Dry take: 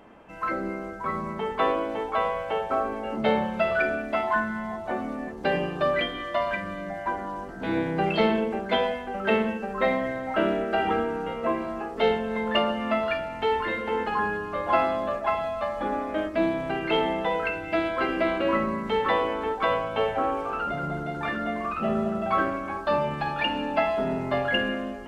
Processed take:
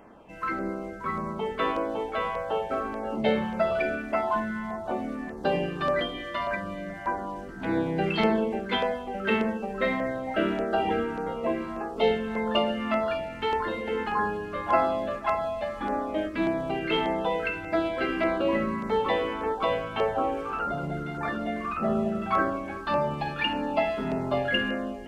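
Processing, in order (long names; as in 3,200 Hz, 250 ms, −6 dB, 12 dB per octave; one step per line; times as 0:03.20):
auto-filter notch saw down 1.7 Hz 460–4,000 Hz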